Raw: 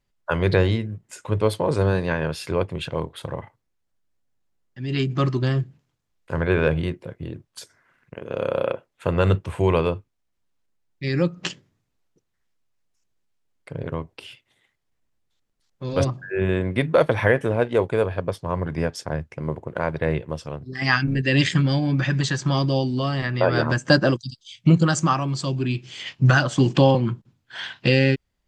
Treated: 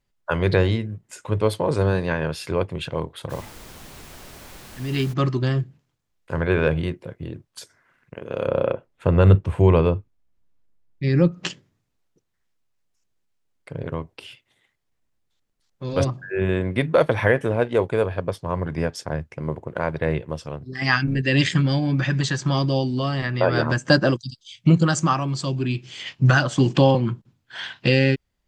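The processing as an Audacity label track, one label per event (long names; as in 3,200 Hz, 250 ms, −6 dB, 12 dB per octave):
3.290000	5.120000	background noise pink −42 dBFS
8.460000	11.320000	spectral tilt −2 dB per octave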